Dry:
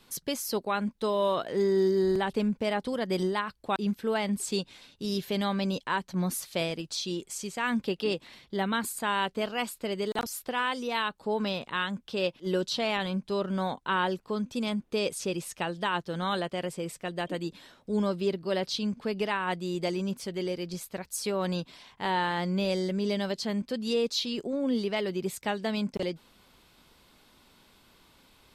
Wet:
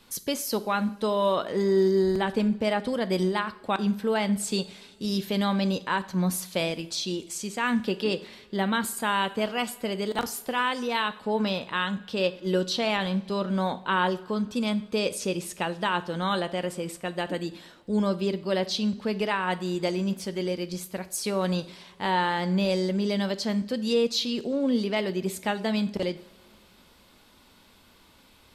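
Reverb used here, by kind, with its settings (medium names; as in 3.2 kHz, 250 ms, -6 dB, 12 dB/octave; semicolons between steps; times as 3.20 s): two-slope reverb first 0.49 s, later 2.9 s, from -20 dB, DRR 11.5 dB; trim +2.5 dB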